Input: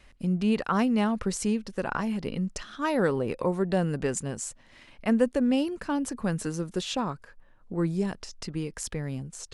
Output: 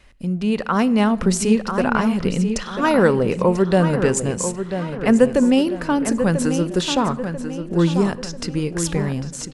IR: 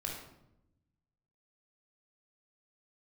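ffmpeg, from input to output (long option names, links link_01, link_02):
-filter_complex "[0:a]asplit=2[link_01][link_02];[link_02]adelay=991,lowpass=frequency=4500:poles=1,volume=-8.5dB,asplit=2[link_03][link_04];[link_04]adelay=991,lowpass=frequency=4500:poles=1,volume=0.43,asplit=2[link_05][link_06];[link_06]adelay=991,lowpass=frequency=4500:poles=1,volume=0.43,asplit=2[link_07][link_08];[link_08]adelay=991,lowpass=frequency=4500:poles=1,volume=0.43,asplit=2[link_09][link_10];[link_10]adelay=991,lowpass=frequency=4500:poles=1,volume=0.43[link_11];[link_01][link_03][link_05][link_07][link_09][link_11]amix=inputs=6:normalize=0,asplit=2[link_12][link_13];[1:a]atrim=start_sample=2205,asetrate=37485,aresample=44100[link_14];[link_13][link_14]afir=irnorm=-1:irlink=0,volume=-18.5dB[link_15];[link_12][link_15]amix=inputs=2:normalize=0,dynaudnorm=framelen=130:gausssize=13:maxgain=6dB,volume=3dB"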